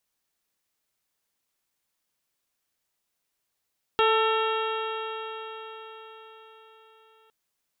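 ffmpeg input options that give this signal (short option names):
-f lavfi -i "aevalsrc='0.0841*pow(10,-3*t/4.95)*sin(2*PI*440.53*t)+0.0596*pow(10,-3*t/4.95)*sin(2*PI*884.21*t)+0.0668*pow(10,-3*t/4.95)*sin(2*PI*1334.18*t)+0.0237*pow(10,-3*t/4.95)*sin(2*PI*1793.47*t)+0.0126*pow(10,-3*t/4.95)*sin(2*PI*2265.04*t)+0.0376*pow(10,-3*t/4.95)*sin(2*PI*2751.69*t)+0.0335*pow(10,-3*t/4.95)*sin(2*PI*3256.07*t)+0.015*pow(10,-3*t/4.95)*sin(2*PI*3780.68*t)':d=3.31:s=44100"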